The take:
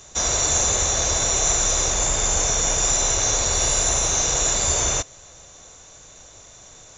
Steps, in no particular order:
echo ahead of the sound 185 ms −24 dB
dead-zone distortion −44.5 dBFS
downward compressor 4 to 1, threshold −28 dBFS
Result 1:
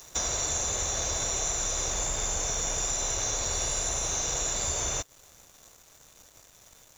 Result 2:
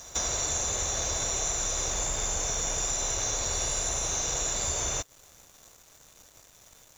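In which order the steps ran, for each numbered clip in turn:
echo ahead of the sound, then dead-zone distortion, then downward compressor
dead-zone distortion, then echo ahead of the sound, then downward compressor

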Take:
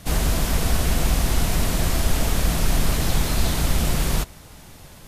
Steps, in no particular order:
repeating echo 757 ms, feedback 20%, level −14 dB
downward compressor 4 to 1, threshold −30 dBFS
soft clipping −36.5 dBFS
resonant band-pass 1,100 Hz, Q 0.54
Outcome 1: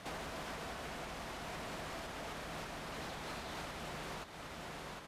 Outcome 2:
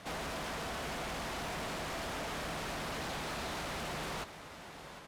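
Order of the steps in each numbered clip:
repeating echo, then downward compressor, then resonant band-pass, then soft clipping
resonant band-pass, then downward compressor, then soft clipping, then repeating echo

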